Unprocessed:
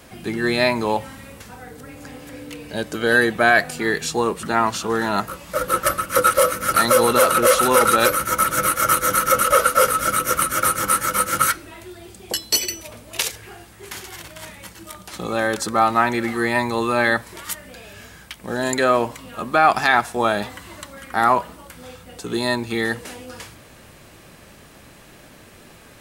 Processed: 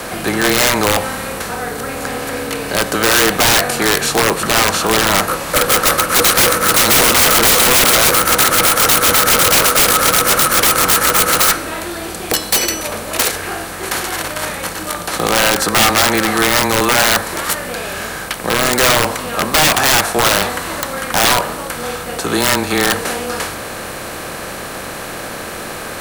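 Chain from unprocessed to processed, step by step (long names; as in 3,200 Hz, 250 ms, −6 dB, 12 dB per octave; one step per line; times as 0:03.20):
compressor on every frequency bin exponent 0.6
frequency shifter −16 Hz
wrap-around overflow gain 8.5 dB
level +3.5 dB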